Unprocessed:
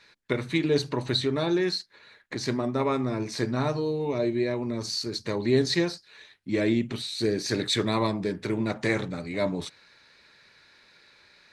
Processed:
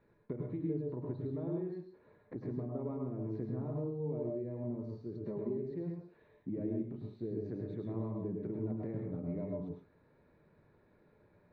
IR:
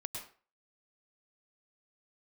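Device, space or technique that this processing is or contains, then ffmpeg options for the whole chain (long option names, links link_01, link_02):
television next door: -filter_complex "[0:a]asettb=1/sr,asplit=3[link_01][link_02][link_03];[link_01]atrim=end=5.144[link_04];[link_02]atrim=start=5.14:end=5.71,asetpts=PTS-STARTPTS,afade=type=in:duration=0.004:curve=qsin,afade=type=out:start_time=0.566:duration=0.004:curve=qsin,aecho=1:1:5.1:0.77,atrim=end_sample=25137[link_05];[link_03]atrim=start=5.706[link_06];[link_04][link_05]acrossfade=duration=0.004:curve1=hsin:curve2=qsin[link_07];[link_07][link_06]acrossfade=duration=0.004:curve1=qsin:curve2=hsin,acompressor=threshold=-38dB:ratio=5,lowpass=500[link_08];[1:a]atrim=start_sample=2205[link_09];[link_08][link_09]afir=irnorm=-1:irlink=0,volume=3.5dB"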